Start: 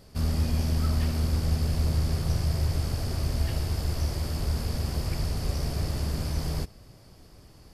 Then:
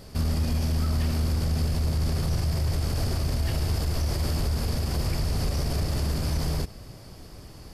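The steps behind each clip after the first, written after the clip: peak limiter -26 dBFS, peak gain reduction 11 dB; trim +7.5 dB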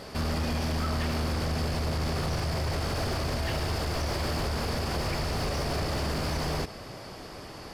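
overdrive pedal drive 20 dB, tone 2.1 kHz, clips at -18.5 dBFS; trim -2 dB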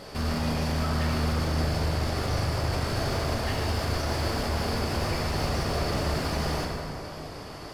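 plate-style reverb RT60 2.4 s, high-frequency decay 0.55×, DRR -1 dB; trim -1.5 dB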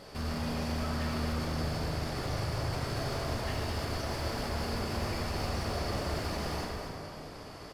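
delay 237 ms -7.5 dB; trim -6.5 dB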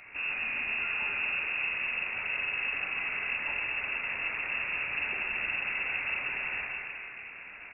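frequency inversion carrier 2.7 kHz

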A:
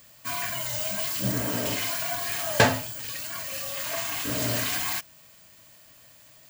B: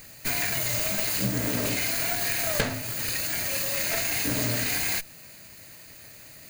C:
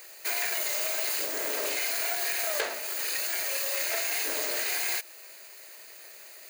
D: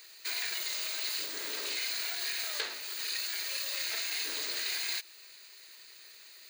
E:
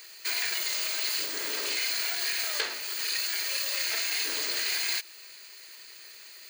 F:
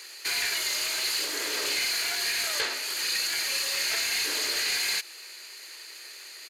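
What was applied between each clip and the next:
comb filter that takes the minimum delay 0.45 ms; compression 8:1, threshold -31 dBFS, peak gain reduction 16 dB; trim +8 dB
elliptic high-pass 370 Hz, stop band 60 dB; in parallel at 0 dB: peak limiter -22.5 dBFS, peak gain reduction 11 dB; on the sum: trim -5.5 dB
fifteen-band graphic EQ 160 Hz -7 dB, 630 Hz -12 dB, 4 kHz +10 dB, 16 kHz -9 dB; trim -6 dB
band-stop 3.8 kHz, Q 11; trim +5.5 dB
saturation -26 dBFS, distortion -15 dB; resampled via 32 kHz; trim +5 dB

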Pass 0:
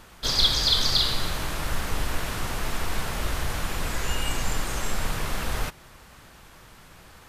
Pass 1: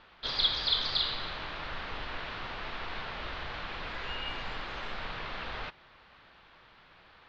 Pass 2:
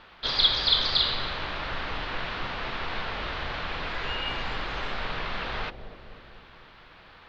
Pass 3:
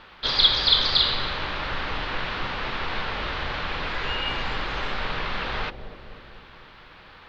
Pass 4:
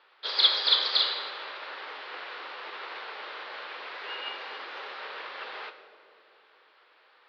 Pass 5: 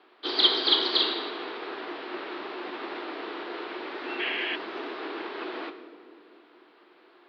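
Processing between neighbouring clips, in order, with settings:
steep low-pass 4.2 kHz 36 dB/octave; bass shelf 350 Hz -11.5 dB; trim -4.5 dB
bucket-brigade echo 249 ms, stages 1024, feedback 61%, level -8 dB; trim +6 dB
band-stop 680 Hz, Q 16; trim +3.5 dB
Chebyshev band-pass 410–5100 Hz, order 3; plate-style reverb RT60 1.5 s, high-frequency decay 0.85×, DRR 5.5 dB; upward expansion 1.5:1, over -36 dBFS; trim -2 dB
painted sound noise, 4.19–4.56 s, 1.7–3.5 kHz -32 dBFS; resonant high-pass 490 Hz, resonance Q 4.9; frequency shift -140 Hz

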